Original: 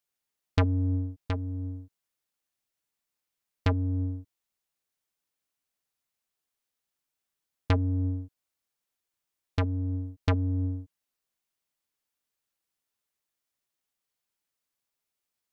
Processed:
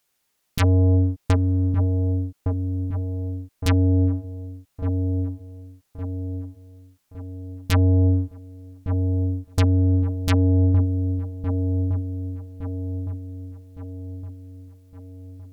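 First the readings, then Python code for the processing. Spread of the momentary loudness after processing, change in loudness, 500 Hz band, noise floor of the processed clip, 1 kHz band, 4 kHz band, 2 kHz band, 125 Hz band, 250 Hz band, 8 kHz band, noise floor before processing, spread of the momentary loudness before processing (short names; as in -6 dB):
19 LU, +7.5 dB, +10.5 dB, -72 dBFS, +5.0 dB, +8.5 dB, +6.5 dB, +11.5 dB, +11.0 dB, n/a, under -85 dBFS, 11 LU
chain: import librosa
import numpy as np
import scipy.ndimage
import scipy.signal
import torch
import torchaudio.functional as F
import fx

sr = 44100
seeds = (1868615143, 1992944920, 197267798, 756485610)

y = fx.fold_sine(x, sr, drive_db=12, ceiling_db=-12.0)
y = fx.echo_wet_lowpass(y, sr, ms=1163, feedback_pct=50, hz=790.0, wet_db=-5)
y = y * librosa.db_to_amplitude(-2.0)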